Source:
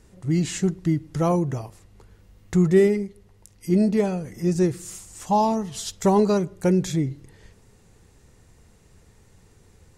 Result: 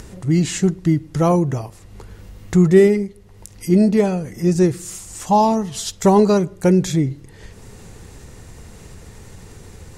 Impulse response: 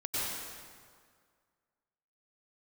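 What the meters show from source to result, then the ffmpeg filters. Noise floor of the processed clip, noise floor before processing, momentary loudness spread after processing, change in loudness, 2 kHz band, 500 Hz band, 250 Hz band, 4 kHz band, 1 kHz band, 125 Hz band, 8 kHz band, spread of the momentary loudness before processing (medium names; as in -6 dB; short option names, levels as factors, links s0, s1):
-44 dBFS, -56 dBFS, 16 LU, +5.5 dB, +5.5 dB, +5.5 dB, +5.5 dB, +5.5 dB, +5.5 dB, +5.5 dB, +6.0 dB, 14 LU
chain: -af "acompressor=mode=upward:threshold=0.02:ratio=2.5,volume=1.88"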